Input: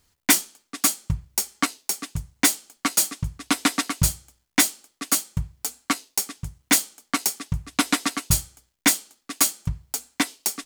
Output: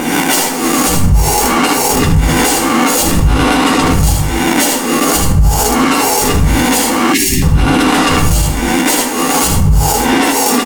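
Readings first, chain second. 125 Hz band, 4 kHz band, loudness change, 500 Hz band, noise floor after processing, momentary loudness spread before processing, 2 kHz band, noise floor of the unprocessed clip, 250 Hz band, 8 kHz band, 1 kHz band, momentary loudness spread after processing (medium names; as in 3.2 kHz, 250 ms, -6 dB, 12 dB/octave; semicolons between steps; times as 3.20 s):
+18.0 dB, +11.0 dB, +12.5 dB, +24.0 dB, -15 dBFS, 11 LU, +12.5 dB, -74 dBFS, +17.0 dB, +9.0 dB, +19.0 dB, 2 LU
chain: reverse spectral sustain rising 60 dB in 0.56 s; vibrato 8.6 Hz 44 cents; treble shelf 2.3 kHz -10 dB; reverse; compression 6:1, threshold -30 dBFS, peak gain reduction 15.5 dB; reverse; bass shelf 70 Hz +9 dB; on a send: early reflections 12 ms -5.5 dB, 78 ms -8.5 dB; on the sum: phaser 0.52 Hz, delay 4.3 ms, feedback 21%; plate-style reverb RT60 1.1 s, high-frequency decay 0.65×, pre-delay 0 ms, DRR 7.5 dB; time-frequency box 7.14–7.43 s, 390–1600 Hz -28 dB; small resonant body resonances 480/820/2800 Hz, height 11 dB, ringing for 25 ms; loudness maximiser +26 dB; trim -1 dB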